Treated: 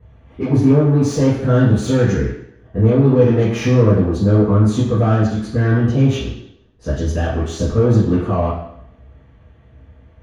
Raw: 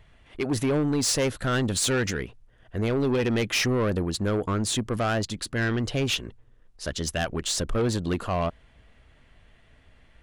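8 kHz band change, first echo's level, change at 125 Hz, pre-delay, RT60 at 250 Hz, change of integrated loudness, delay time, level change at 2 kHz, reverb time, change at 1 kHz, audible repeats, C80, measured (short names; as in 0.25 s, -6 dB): -6.0 dB, none, +15.0 dB, 3 ms, 0.70 s, +10.5 dB, none, +0.5 dB, 0.70 s, +5.5 dB, none, 6.5 dB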